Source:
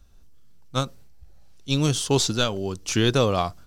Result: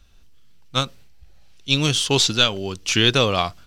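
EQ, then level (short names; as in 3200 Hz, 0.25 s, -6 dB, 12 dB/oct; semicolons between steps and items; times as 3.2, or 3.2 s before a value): bell 2800 Hz +10.5 dB 1.7 oct; 0.0 dB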